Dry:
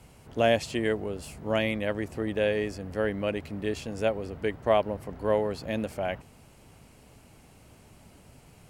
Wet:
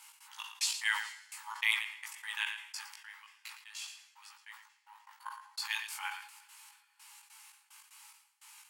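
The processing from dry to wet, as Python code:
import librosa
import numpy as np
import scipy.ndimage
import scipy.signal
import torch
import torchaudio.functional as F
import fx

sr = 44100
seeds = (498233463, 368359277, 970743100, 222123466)

y = fx.high_shelf(x, sr, hz=2600.0, db=9.0)
y = fx.level_steps(y, sr, step_db=21, at=(2.87, 5.26))
y = fx.step_gate(y, sr, bpm=148, pattern='x.xx..x.xx...x', floor_db=-60.0, edge_ms=4.5)
y = fx.brickwall_highpass(y, sr, low_hz=800.0)
y = fx.doubler(y, sr, ms=18.0, db=-3.5)
y = y + 10.0 ** (-18.0 / 20.0) * np.pad(y, (int(113 * sr / 1000.0), 0))[:len(y)]
y = fx.rev_double_slope(y, sr, seeds[0], early_s=0.33, late_s=4.6, knee_db=-18, drr_db=14.0)
y = fx.sustainer(y, sr, db_per_s=85.0)
y = y * librosa.db_to_amplitude(-2.0)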